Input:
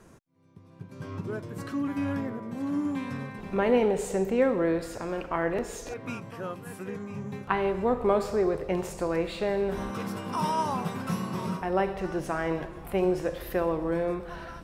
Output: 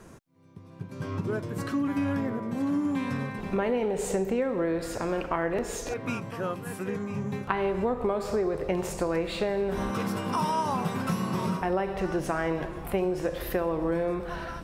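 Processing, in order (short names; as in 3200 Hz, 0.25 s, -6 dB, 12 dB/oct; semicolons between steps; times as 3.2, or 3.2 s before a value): compressor 10:1, threshold -28 dBFS, peak gain reduction 10.5 dB; gain +4.5 dB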